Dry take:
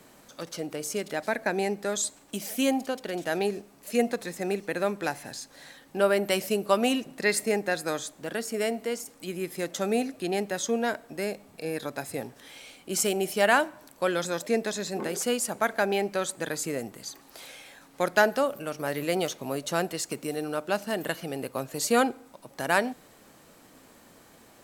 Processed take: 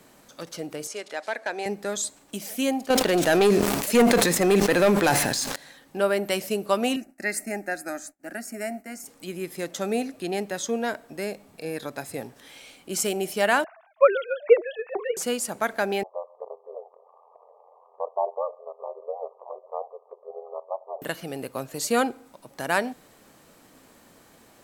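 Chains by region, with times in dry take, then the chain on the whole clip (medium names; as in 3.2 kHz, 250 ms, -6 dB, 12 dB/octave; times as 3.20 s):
0.87–1.66 s: overload inside the chain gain 18 dB + band-pass 490–7800 Hz
2.90–5.56 s: waveshaping leveller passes 3 + decay stretcher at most 33 dB/s
6.96–9.04 s: expander -39 dBFS + static phaser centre 690 Hz, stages 8
13.64–15.17 s: formants replaced by sine waves + transient shaper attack +11 dB, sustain +3 dB
16.03–21.02 s: brick-wall FIR band-pass 440–1200 Hz + ring modulator 43 Hz + upward compressor, threshold -46 dBFS
whole clip: none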